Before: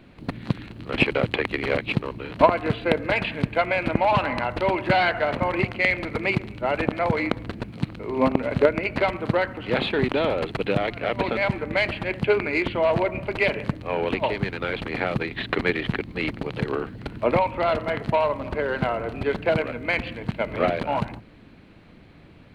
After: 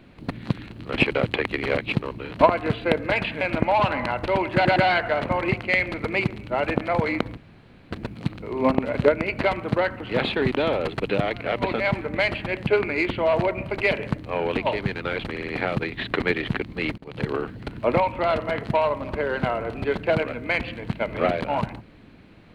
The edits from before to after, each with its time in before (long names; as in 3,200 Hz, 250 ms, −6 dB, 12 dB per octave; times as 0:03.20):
0:03.41–0:03.74: remove
0:04.87: stutter 0.11 s, 3 plays
0:07.48: splice in room tone 0.54 s
0:14.87: stutter 0.06 s, 4 plays
0:16.37–0:16.64: fade in